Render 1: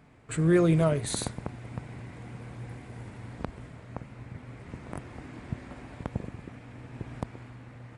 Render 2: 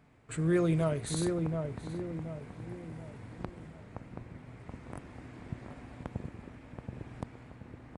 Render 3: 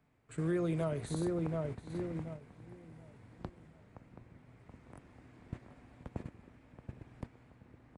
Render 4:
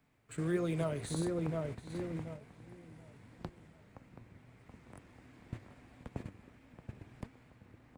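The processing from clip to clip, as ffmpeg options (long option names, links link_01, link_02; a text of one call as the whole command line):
ffmpeg -i in.wav -filter_complex "[0:a]asplit=2[link_01][link_02];[link_02]adelay=728,lowpass=frequency=1000:poles=1,volume=-4dB,asplit=2[link_03][link_04];[link_04]adelay=728,lowpass=frequency=1000:poles=1,volume=0.46,asplit=2[link_05][link_06];[link_06]adelay=728,lowpass=frequency=1000:poles=1,volume=0.46,asplit=2[link_07][link_08];[link_08]adelay=728,lowpass=frequency=1000:poles=1,volume=0.46,asplit=2[link_09][link_10];[link_10]adelay=728,lowpass=frequency=1000:poles=1,volume=0.46,asplit=2[link_11][link_12];[link_12]adelay=728,lowpass=frequency=1000:poles=1,volume=0.46[link_13];[link_01][link_03][link_05][link_07][link_09][link_11][link_13]amix=inputs=7:normalize=0,volume=-5.5dB" out.wav
ffmpeg -i in.wav -filter_complex "[0:a]agate=range=-10dB:threshold=-38dB:ratio=16:detection=peak,acrossover=split=270|1200[link_01][link_02][link_03];[link_01]acompressor=threshold=-37dB:ratio=4[link_04];[link_02]acompressor=threshold=-34dB:ratio=4[link_05];[link_03]acompressor=threshold=-50dB:ratio=4[link_06];[link_04][link_05][link_06]amix=inputs=3:normalize=0" out.wav
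ffmpeg -i in.wav -filter_complex "[0:a]acrossover=split=1800[link_01][link_02];[link_01]flanger=delay=3.6:depth=6.8:regen=76:speed=1.5:shape=sinusoidal[link_03];[link_02]acrusher=bits=4:mode=log:mix=0:aa=0.000001[link_04];[link_03][link_04]amix=inputs=2:normalize=0,volume=4dB" out.wav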